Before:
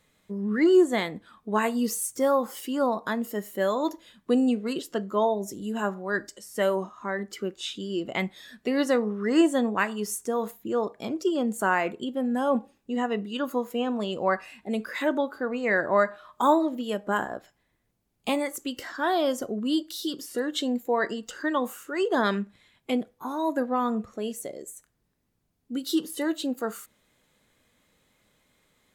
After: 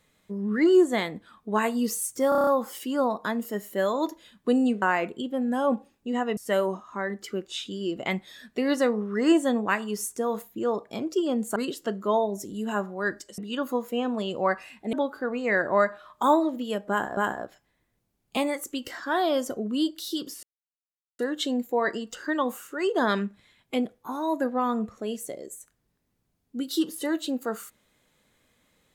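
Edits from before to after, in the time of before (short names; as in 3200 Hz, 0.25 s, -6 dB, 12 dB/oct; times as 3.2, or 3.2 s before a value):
2.29 stutter 0.03 s, 7 plays
4.64–6.46 swap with 11.65–13.2
14.75–15.12 cut
17.09–17.36 loop, 2 plays
20.35 insert silence 0.76 s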